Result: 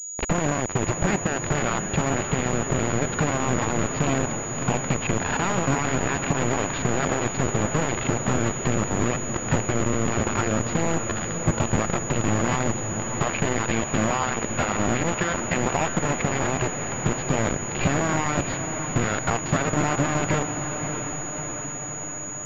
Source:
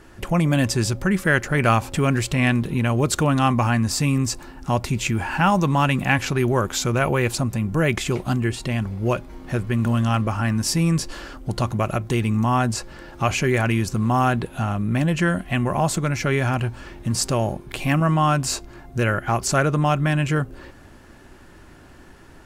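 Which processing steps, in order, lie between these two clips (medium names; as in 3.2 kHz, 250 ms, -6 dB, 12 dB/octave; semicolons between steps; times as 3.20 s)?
low-pass that closes with the level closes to 2.5 kHz, closed at -15 dBFS; 13.63–15.74 s: bass shelf 380 Hz -8 dB; peak limiter -16.5 dBFS, peak gain reduction 10 dB; compression 20:1, threshold -30 dBFS, peak gain reduction 11 dB; bit crusher 5-bit; distance through air 130 m; echo that smears into a reverb 615 ms, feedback 68%, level -7.5 dB; crackling interface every 0.13 s, samples 512, repeat, from 0.56 s; class-D stage that switches slowly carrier 6.8 kHz; trim +9 dB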